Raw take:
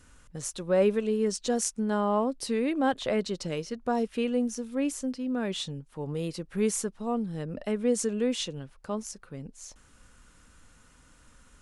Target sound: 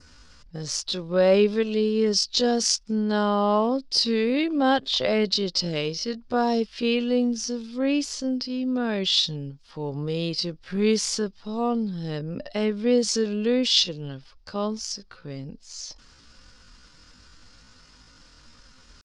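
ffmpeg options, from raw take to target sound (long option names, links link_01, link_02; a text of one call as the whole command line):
ffmpeg -i in.wav -af "adynamicequalizer=threshold=0.002:dfrequency=3300:dqfactor=2.4:tfrequency=3300:tqfactor=2.4:attack=5:release=100:ratio=0.375:range=2:mode=boostabove:tftype=bell,atempo=0.61,lowpass=frequency=4900:width_type=q:width=6,volume=4dB" out.wav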